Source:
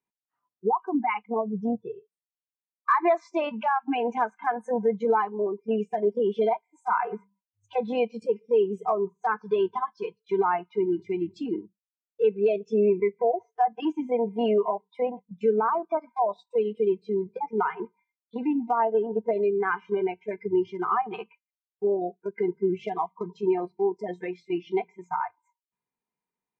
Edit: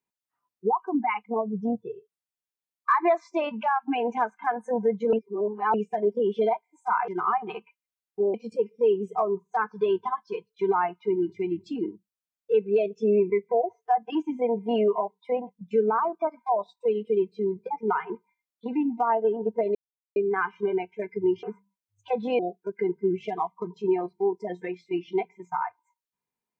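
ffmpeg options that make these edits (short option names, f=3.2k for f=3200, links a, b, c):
-filter_complex "[0:a]asplit=8[a][b][c][d][e][f][g][h];[a]atrim=end=5.132[i];[b]atrim=start=5.128:end=5.742,asetpts=PTS-STARTPTS,areverse[j];[c]atrim=start=5.738:end=7.082[k];[d]atrim=start=20.718:end=21.982[l];[e]atrim=start=8.038:end=19.45,asetpts=PTS-STARTPTS,afade=t=out:st=11.408:d=0.004:c=hsin,apad=pad_dur=0.41[m];[f]atrim=start=19.45:end=20.722,asetpts=PTS-STARTPTS,afade=t=in:d=0.004:c=hsin[n];[g]atrim=start=7.078:end=8.042[o];[h]atrim=start=21.978[p];[i][j]acrossfade=d=0.004:c1=hsin:c2=hsin[q];[q][k]acrossfade=d=0.004:c1=hsin:c2=hsin[r];[r][l]acrossfade=d=0.004:c1=hsin:c2=hsin[s];[m][n]concat=n=2:v=0:a=1[t];[s][t]acrossfade=d=0.004:c1=hsin:c2=hsin[u];[u][o]acrossfade=d=0.004:c1=hsin:c2=hsin[v];[v][p]acrossfade=d=0.004:c1=hsin:c2=hsin"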